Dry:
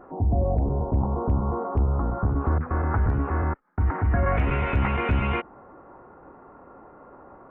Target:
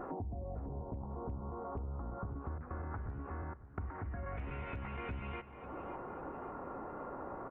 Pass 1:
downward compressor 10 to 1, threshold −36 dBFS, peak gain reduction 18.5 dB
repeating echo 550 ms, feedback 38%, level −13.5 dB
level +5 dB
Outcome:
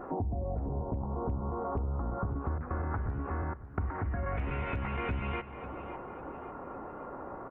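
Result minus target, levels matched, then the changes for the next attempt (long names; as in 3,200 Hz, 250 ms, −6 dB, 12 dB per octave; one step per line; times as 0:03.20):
downward compressor: peak gain reduction −8 dB
change: downward compressor 10 to 1, threshold −45 dBFS, peak gain reduction 26.5 dB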